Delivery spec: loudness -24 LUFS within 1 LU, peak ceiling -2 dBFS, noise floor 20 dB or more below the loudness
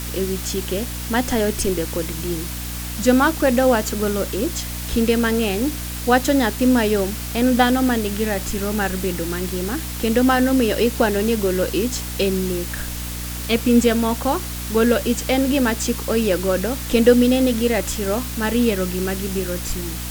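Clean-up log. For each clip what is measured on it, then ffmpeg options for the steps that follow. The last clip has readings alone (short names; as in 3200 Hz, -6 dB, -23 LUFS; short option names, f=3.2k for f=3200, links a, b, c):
hum 60 Hz; harmonics up to 300 Hz; hum level -28 dBFS; noise floor -29 dBFS; noise floor target -40 dBFS; loudness -20.0 LUFS; peak -1.5 dBFS; loudness target -24.0 LUFS
-> -af "bandreject=f=60:t=h:w=4,bandreject=f=120:t=h:w=4,bandreject=f=180:t=h:w=4,bandreject=f=240:t=h:w=4,bandreject=f=300:t=h:w=4"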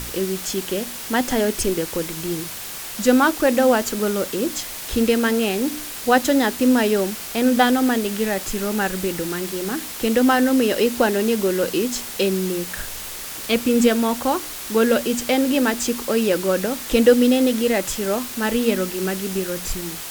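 hum none; noise floor -33 dBFS; noise floor target -41 dBFS
-> -af "afftdn=nr=8:nf=-33"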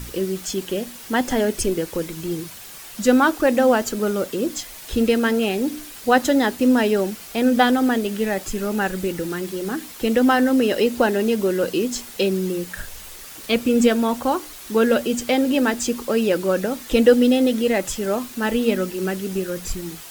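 noise floor -39 dBFS; noise floor target -41 dBFS
-> -af "afftdn=nr=6:nf=-39"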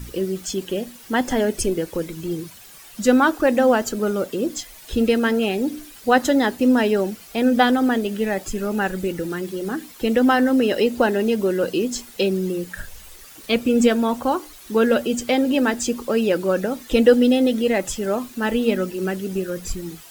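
noise floor -44 dBFS; loudness -21.0 LUFS; peak -1.5 dBFS; loudness target -24.0 LUFS
-> -af "volume=-3dB"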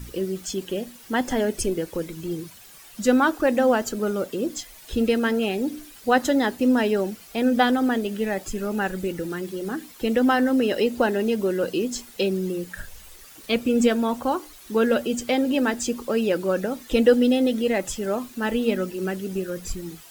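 loudness -24.0 LUFS; peak -4.5 dBFS; noise floor -47 dBFS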